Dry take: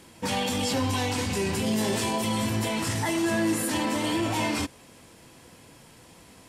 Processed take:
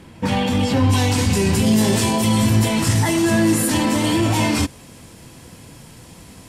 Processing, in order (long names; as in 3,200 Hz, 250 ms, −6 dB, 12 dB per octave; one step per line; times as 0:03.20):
bass and treble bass +8 dB, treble −9 dB, from 0:00.91 treble +3 dB
level +6 dB